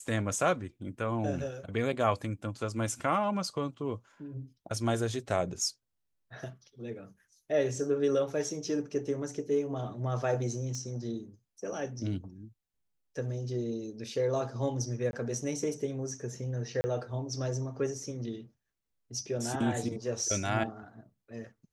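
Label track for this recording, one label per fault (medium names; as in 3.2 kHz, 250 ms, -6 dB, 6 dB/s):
10.750000	10.750000	pop -27 dBFS
15.110000	15.130000	dropout 21 ms
16.810000	16.840000	dropout 30 ms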